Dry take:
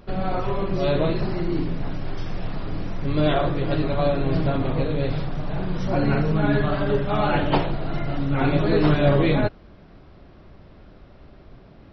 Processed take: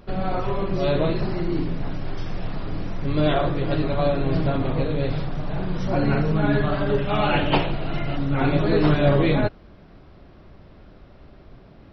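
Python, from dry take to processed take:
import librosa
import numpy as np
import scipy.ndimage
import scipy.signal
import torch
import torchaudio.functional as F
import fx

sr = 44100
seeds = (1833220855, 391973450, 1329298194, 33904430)

y = fx.peak_eq(x, sr, hz=2700.0, db=7.5, octaves=0.61, at=(6.98, 8.16))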